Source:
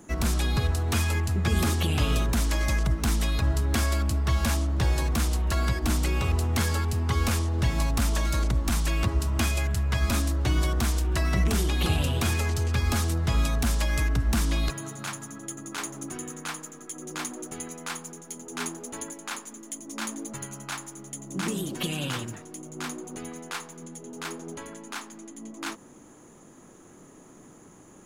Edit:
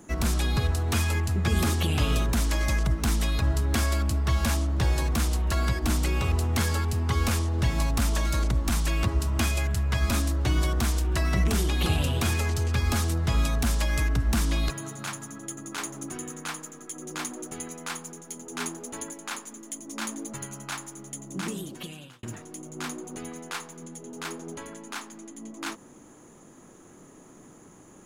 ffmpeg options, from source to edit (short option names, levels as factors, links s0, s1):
-filter_complex "[0:a]asplit=2[s0][s1];[s0]atrim=end=22.23,asetpts=PTS-STARTPTS,afade=t=out:st=21.16:d=1.07[s2];[s1]atrim=start=22.23,asetpts=PTS-STARTPTS,afade=t=in:d=0.004:c=hsin[s3];[s2][s3]concat=n=2:v=0:a=1"